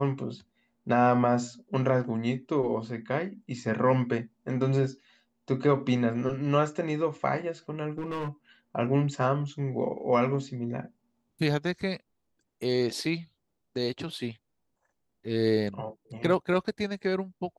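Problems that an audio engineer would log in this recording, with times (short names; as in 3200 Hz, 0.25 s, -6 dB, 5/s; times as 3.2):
7.91–8.28 clipped -28.5 dBFS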